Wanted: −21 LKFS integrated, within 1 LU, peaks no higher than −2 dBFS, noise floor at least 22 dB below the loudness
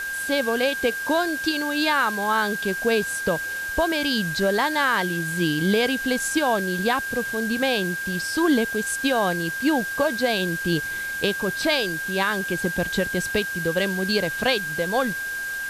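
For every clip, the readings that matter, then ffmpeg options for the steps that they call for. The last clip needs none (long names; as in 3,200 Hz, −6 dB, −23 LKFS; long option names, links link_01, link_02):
interfering tone 1,600 Hz; level of the tone −27 dBFS; background noise floor −30 dBFS; target noise floor −45 dBFS; integrated loudness −23.0 LKFS; sample peak −6.0 dBFS; target loudness −21.0 LKFS
→ -af "bandreject=frequency=1600:width=30"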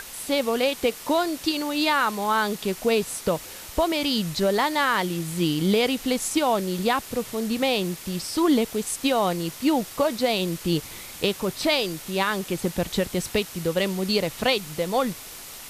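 interfering tone none found; background noise floor −40 dBFS; target noise floor −47 dBFS
→ -af "afftdn=noise_reduction=7:noise_floor=-40"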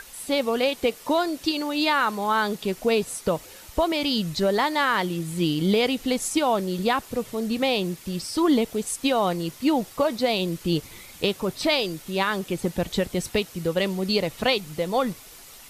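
background noise floor −46 dBFS; target noise floor −47 dBFS
→ -af "afftdn=noise_reduction=6:noise_floor=-46"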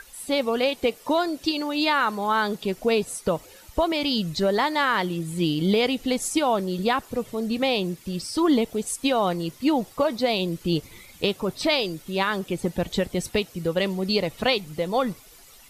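background noise floor −50 dBFS; integrated loudness −24.5 LKFS; sample peak −7.5 dBFS; target loudness −21.0 LKFS
→ -af "volume=3.5dB"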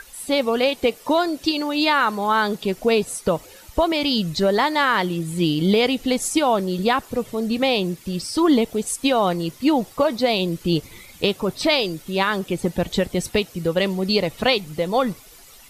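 integrated loudness −21.0 LKFS; sample peak −4.0 dBFS; background noise floor −46 dBFS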